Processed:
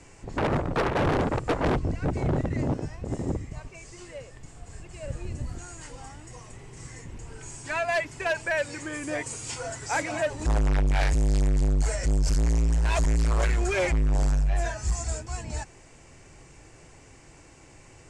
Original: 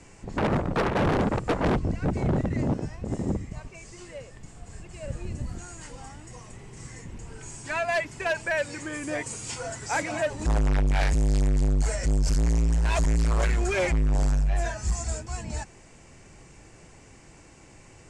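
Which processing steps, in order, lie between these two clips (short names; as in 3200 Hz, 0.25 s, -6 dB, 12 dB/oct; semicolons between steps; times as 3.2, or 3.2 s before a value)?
bell 200 Hz -8 dB 0.29 oct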